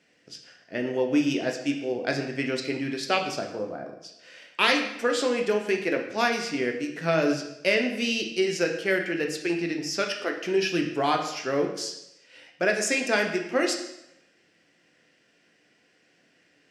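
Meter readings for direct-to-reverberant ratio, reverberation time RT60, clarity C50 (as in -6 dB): 2.0 dB, 0.85 s, 7.0 dB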